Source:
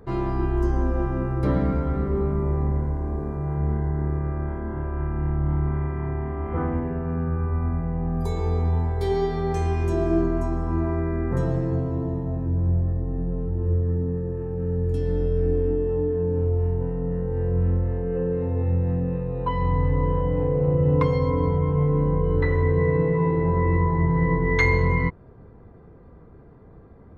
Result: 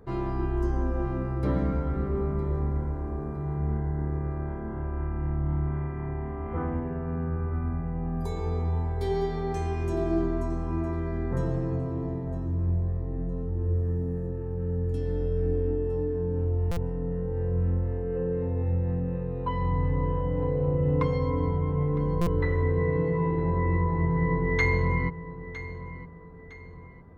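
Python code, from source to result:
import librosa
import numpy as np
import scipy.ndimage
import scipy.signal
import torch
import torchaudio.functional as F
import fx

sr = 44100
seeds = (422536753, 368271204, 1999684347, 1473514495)

y = fx.high_shelf(x, sr, hz=3700.0, db=10.0, at=(13.75, 14.27))
y = fx.echo_feedback(y, sr, ms=959, feedback_pct=38, wet_db=-14.5)
y = fx.buffer_glitch(y, sr, at_s=(16.71, 22.21), block=256, repeats=9)
y = y * librosa.db_to_amplitude(-4.5)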